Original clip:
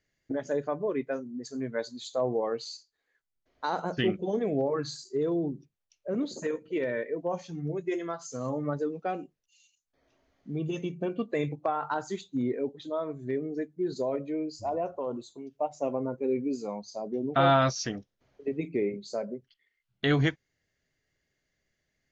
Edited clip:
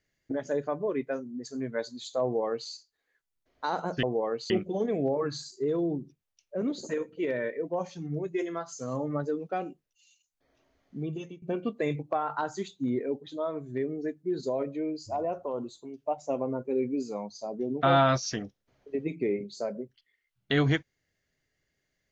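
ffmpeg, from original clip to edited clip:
-filter_complex "[0:a]asplit=4[a][b][c][d];[a]atrim=end=4.032[e];[b]atrim=start=2.228:end=2.702[f];[c]atrim=start=4.028:end=10.95,asetpts=PTS-STARTPTS,afade=t=out:st=6.482:d=0.44:silence=0.0794328[g];[d]atrim=start=10.95,asetpts=PTS-STARTPTS,afade=t=in:d=0.004:c=hsin:silence=0.0794328[h];[e][f]acrossfade=d=0.004:c1=hsin:c2=hsin[i];[g][h]concat=n=2:v=0:a=1[j];[i][j]acrossfade=d=0.004:c1=hsin:c2=hsin"

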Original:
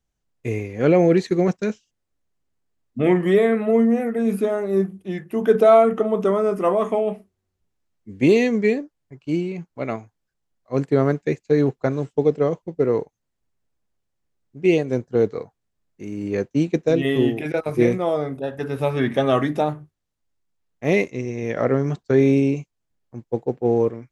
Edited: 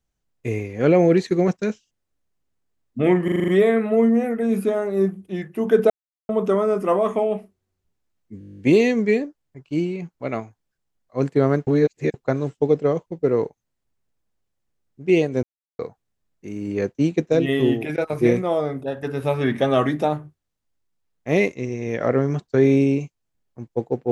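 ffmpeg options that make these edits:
-filter_complex "[0:a]asplit=23[a][b][c][d][e][f][g][h][i][j][k][l][m][n][o][p][q][r][s][t][u][v][w];[a]atrim=end=3.282[x];[b]atrim=start=3.238:end=3.282[y];[c]atrim=start=3.238:end=3.282[z];[d]atrim=start=3.238:end=3.282[aa];[e]atrim=start=3.238:end=3.282[ab];[f]atrim=start=3.238:end=3.282[ac];[g]atrim=start=3.238:end=5.66,asetpts=PTS-STARTPTS,afade=t=out:st=2.418:d=0.004:c=hsin[ad];[h]atrim=start=5.66:end=6.05,asetpts=PTS-STARTPTS,volume=0[ae];[i]atrim=start=6.05:end=8.172,asetpts=PTS-STARTPTS,afade=t=in:d=0.004:c=hsin[af];[j]atrim=start=8.148:end=8.172[ag];[k]atrim=start=8.148:end=8.172[ah];[l]atrim=start=8.148:end=8.172[ai];[m]atrim=start=8.148:end=8.172[aj];[n]atrim=start=8.148:end=8.172[ak];[o]atrim=start=8.148:end=8.172[al];[p]atrim=start=8.148:end=8.172[am];[q]atrim=start=8.148:end=8.172[an];[r]atrim=start=8.148:end=8.172[ao];[s]atrim=start=8.148:end=11.232[ap];[t]atrim=start=11.228:end=11.702,asetpts=PTS-STARTPTS,areverse[aq];[u]atrim=start=11.698:end=14.99,asetpts=PTS-STARTPTS,afade=t=out:st=3.288:d=0.004:c=hsin[ar];[v]atrim=start=14.99:end=15.35,asetpts=PTS-STARTPTS,volume=0[as];[w]atrim=start=15.35,asetpts=PTS-STARTPTS,afade=t=in:d=0.004:c=hsin[at];[x][y]acrossfade=d=0.004:c1=hsin:c2=hsin[au];[au][z]acrossfade=d=0.004:c1=hsin:c2=hsin[av];[av][aa]acrossfade=d=0.004:c1=hsin:c2=hsin[aw];[aw][ab]acrossfade=d=0.004:c1=hsin:c2=hsin[ax];[ax][ac]acrossfade=d=0.004:c1=hsin:c2=hsin[ay];[ad][ae][af]concat=n=3:v=0:a=1[az];[ay][az]acrossfade=d=0.004:c1=hsin:c2=hsin[ba];[ba][ag]acrossfade=d=0.004:c1=hsin:c2=hsin[bb];[bb][ah]acrossfade=d=0.004:c1=hsin:c2=hsin[bc];[bc][ai]acrossfade=d=0.004:c1=hsin:c2=hsin[bd];[bd][aj]acrossfade=d=0.004:c1=hsin:c2=hsin[be];[be][ak]acrossfade=d=0.004:c1=hsin:c2=hsin[bf];[bf][al]acrossfade=d=0.004:c1=hsin:c2=hsin[bg];[bg][am]acrossfade=d=0.004:c1=hsin:c2=hsin[bh];[bh][an]acrossfade=d=0.004:c1=hsin:c2=hsin[bi];[bi][ao]acrossfade=d=0.004:c1=hsin:c2=hsin[bj];[bj][ap]acrossfade=d=0.004:c1=hsin:c2=hsin[bk];[bk][aq]acrossfade=d=0.004:c1=hsin:c2=hsin[bl];[ar][as][at]concat=n=3:v=0:a=1[bm];[bl][bm]acrossfade=d=0.004:c1=hsin:c2=hsin"

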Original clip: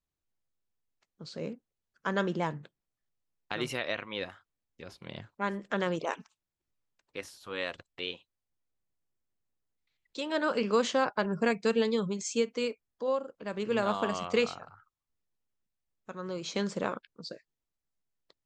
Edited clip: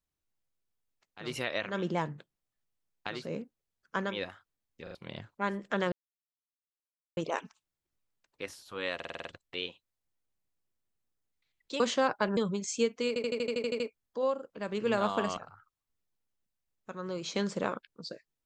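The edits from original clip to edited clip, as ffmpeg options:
-filter_complex "[0:a]asplit=27[a][b][c][d][e][f][g][h][i][j][k][l][m][n][o][p][q][r][s][t][u][v][w][x][y][z][aa];[a]atrim=end=1.38[ab];[b]atrim=start=3.48:end=4.2[ac];[c]atrim=start=2.07:end=3.72[ad];[d]atrim=start=1.14:end=2.31[ae];[e]atrim=start=3.96:end=4.872[af];[f]atrim=start=4.828:end=4.872[ag];[g]atrim=start=4.828:end=4.872[ah];[h]atrim=start=4.948:end=5.92,asetpts=PTS-STARTPTS,afade=t=out:st=0.968:d=0.004:c=hsin,apad=pad_dur=1.25[ai];[i]atrim=start=5.92:end=7.752,asetpts=PTS-STARTPTS,afade=t=in:d=0.004:c=hsin[aj];[j]atrim=start=7.698:end=7.752[ak];[k]atrim=start=7.698:end=7.752[al];[l]atrim=start=7.698:end=7.752[am];[m]atrim=start=7.698:end=7.752[an];[n]atrim=start=7.698:end=7.752[ao];[o]atrim=start=7.698:end=10.252[ap];[p]atrim=start=10.768:end=11.342[aq];[q]atrim=start=11.938:end=12.732[ar];[r]atrim=start=12.648:end=12.732[as];[s]atrim=start=12.648:end=12.732[at];[t]atrim=start=12.648:end=12.732[au];[u]atrim=start=12.648:end=12.732[av];[v]atrim=start=12.648:end=12.732[aw];[w]atrim=start=12.648:end=12.732[ax];[x]atrim=start=12.648:end=12.732[ay];[y]atrim=start=12.648:end=12.732[az];[z]atrim=start=12.648:end=14.222[ba];[aa]atrim=start=14.568[bb];[ab][ac]acrossfade=d=0.24:c1=tri:c2=tri[bc];[bc][ad]acrossfade=d=0.24:c1=tri:c2=tri[bd];[bd][ae]acrossfade=d=0.24:c1=tri:c2=tri[be];[be][af]acrossfade=d=0.24:c1=tri:c2=tri[bf];[bf][ag]acrossfade=d=0.004:c1=hsin:c2=hsin[bg];[bg][ah]acrossfade=d=0.004:c1=hsin:c2=hsin[bh];[ai][aj]concat=n=2:v=0:a=1[bi];[bh][bi]acrossfade=d=0.004:c1=hsin:c2=hsin[bj];[bj][ak]acrossfade=d=0.004:c1=hsin:c2=hsin[bk];[bk][al]acrossfade=d=0.004:c1=hsin:c2=hsin[bl];[bl][am]acrossfade=d=0.004:c1=hsin:c2=hsin[bm];[bm][an]acrossfade=d=0.004:c1=hsin:c2=hsin[bn];[bn][ao]acrossfade=d=0.004:c1=hsin:c2=hsin[bo];[bo][ap]acrossfade=d=0.004:c1=hsin:c2=hsin[bp];[bp][aq]acrossfade=d=0.004:c1=hsin:c2=hsin[bq];[bq][ar]acrossfade=d=0.004:c1=hsin:c2=hsin[br];[br][as]acrossfade=d=0.004:c1=hsin:c2=hsin[bs];[bs][at]acrossfade=d=0.004:c1=hsin:c2=hsin[bt];[bt][au]acrossfade=d=0.004:c1=hsin:c2=hsin[bu];[bu][av]acrossfade=d=0.004:c1=hsin:c2=hsin[bv];[bv][aw]acrossfade=d=0.004:c1=hsin:c2=hsin[bw];[bw][ax]acrossfade=d=0.004:c1=hsin:c2=hsin[bx];[bx][ay]acrossfade=d=0.004:c1=hsin:c2=hsin[by];[by][az]acrossfade=d=0.004:c1=hsin:c2=hsin[bz];[bz][ba]acrossfade=d=0.004:c1=hsin:c2=hsin[ca];[ca][bb]acrossfade=d=0.004:c1=hsin:c2=hsin"

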